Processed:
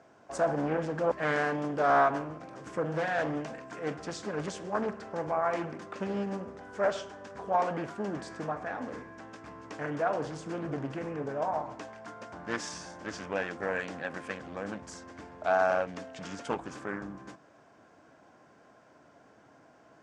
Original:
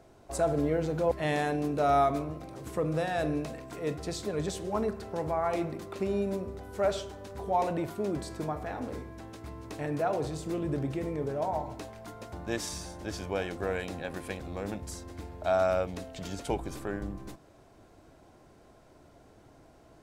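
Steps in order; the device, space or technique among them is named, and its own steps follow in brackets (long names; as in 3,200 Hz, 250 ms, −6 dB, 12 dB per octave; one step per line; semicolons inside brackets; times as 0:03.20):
full-range speaker at full volume (highs frequency-modulated by the lows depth 0.57 ms; loudspeaker in its box 180–7,300 Hz, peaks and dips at 370 Hz −6 dB, 1,100 Hz +3 dB, 1,600 Hz +7 dB, 4,000 Hz −7 dB)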